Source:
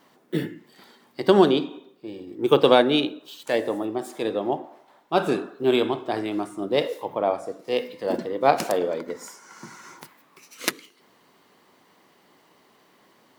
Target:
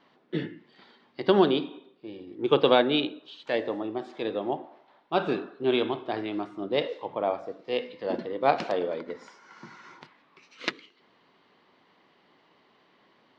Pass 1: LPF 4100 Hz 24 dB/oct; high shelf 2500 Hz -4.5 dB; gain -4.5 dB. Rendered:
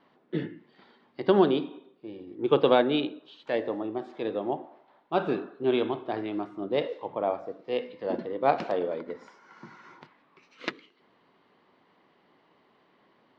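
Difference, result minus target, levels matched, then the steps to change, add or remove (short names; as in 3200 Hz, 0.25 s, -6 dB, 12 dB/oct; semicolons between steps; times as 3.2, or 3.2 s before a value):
4000 Hz band -5.0 dB
change: high shelf 2500 Hz +4 dB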